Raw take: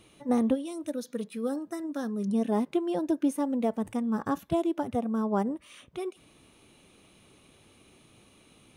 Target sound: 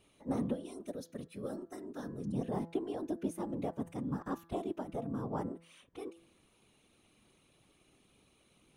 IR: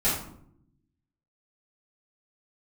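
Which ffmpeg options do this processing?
-af "afftfilt=real='hypot(re,im)*cos(2*PI*random(0))':imag='hypot(re,im)*sin(2*PI*random(1))':win_size=512:overlap=0.75,bandreject=f=167.7:t=h:w=4,bandreject=f=335.4:t=h:w=4,bandreject=f=503.1:t=h:w=4,bandreject=f=670.8:t=h:w=4,bandreject=f=838.5:t=h:w=4,bandreject=f=1.0062k:t=h:w=4,bandreject=f=1.1739k:t=h:w=4,bandreject=f=1.3416k:t=h:w=4,bandreject=f=1.5093k:t=h:w=4,bandreject=f=1.677k:t=h:w=4,bandreject=f=1.8447k:t=h:w=4,volume=-3.5dB"

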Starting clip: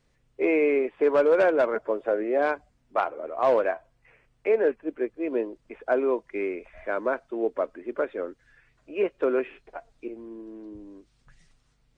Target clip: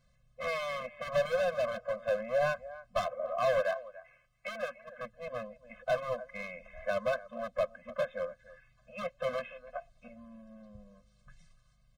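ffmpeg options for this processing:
-filter_complex "[0:a]equalizer=f=1.3k:t=o:w=0.22:g=6,aecho=1:1:290:0.0944,asoftclip=type=hard:threshold=-23.5dB,asettb=1/sr,asplit=3[a][b][c];[a]atrim=end=1.384[d];[b]atrim=start=1.38:end=1.98,asetpts=PTS-STARTPTS,afade=t=in:d=0.004:c=qsin,afade=t=out:st=0.596:d=0.004:c=qsin,acompressor=threshold=-27dB:ratio=6[e];[c]atrim=start=1.976[f];[d][e]acrossfade=d=0.004:c1=hsin:c2=qsin[g];[g][f]acrossfade=d=0.004:c1=qsin:c2=hsin,asettb=1/sr,asplit=3[h][i][j];[h]atrim=end=3.624[k];[i]atrim=start=3.62:end=4.99,asetpts=PTS-STARTPTS,afade=t=in:d=0.004:c=qsin,afade=t=out:st=1.366:d=0.004:c=qsin,lowshelf=f=360:g=-10[l];[j]atrim=start=4.986[m];[k][l]acrossfade=d=0.004:c1=hsin:c2=qsin[n];[n][m]acrossfade=d=0.004:c1=qsin:c2=hsin,afftfilt=real='re*eq(mod(floor(b*sr/1024/250),2),0)':imag='im*eq(mod(floor(b*sr/1024/250),2),0)':win_size=1024:overlap=0.75"

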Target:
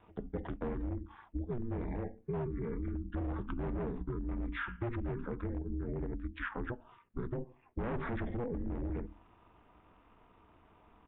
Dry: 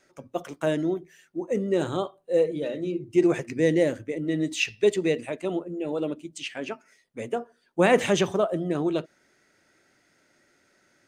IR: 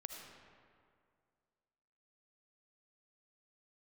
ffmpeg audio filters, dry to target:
-af "tiltshelf=f=890:g=4,bandreject=f=50:t=h:w=6,bandreject=f=100:t=h:w=6,bandreject=f=150:t=h:w=6,bandreject=f=200:t=h:w=6,bandreject=f=250:t=h:w=6,bandreject=f=300:t=h:w=6,bandreject=f=350:t=h:w=6,asetrate=24750,aresample=44100,atempo=1.7818,aeval=exprs='val(0)*sin(2*PI*120*n/s)':c=same,aresample=8000,asoftclip=type=hard:threshold=-22dB,aresample=44100,lowpass=f=2.6k:w=0.5412,lowpass=f=2.6k:w=1.3066,equalizer=f=270:w=0.64:g=-4.5,alimiter=level_in=7dB:limit=-24dB:level=0:latency=1:release=12,volume=-7dB,acompressor=threshold=-42dB:ratio=6,volume=8dB"

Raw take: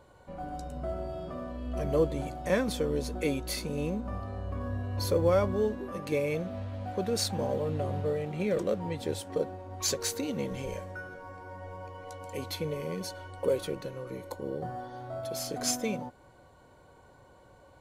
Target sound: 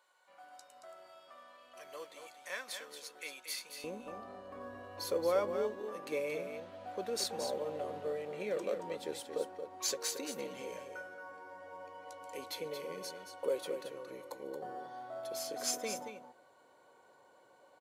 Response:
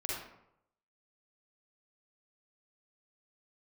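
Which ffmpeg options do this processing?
-af "asetnsamples=n=441:p=0,asendcmd='3.84 highpass f 380',highpass=1.3k,aecho=1:1:226:0.398,volume=-5dB"

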